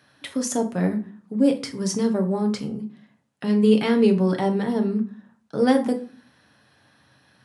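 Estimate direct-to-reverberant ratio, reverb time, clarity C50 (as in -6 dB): 4.0 dB, 0.45 s, 13.0 dB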